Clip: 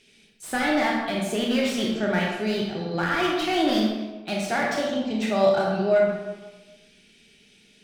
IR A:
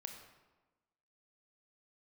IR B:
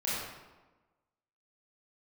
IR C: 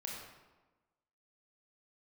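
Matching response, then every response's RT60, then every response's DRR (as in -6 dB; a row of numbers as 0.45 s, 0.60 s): C; 1.2 s, 1.2 s, 1.2 s; 4.0 dB, -9.0 dB, -2.5 dB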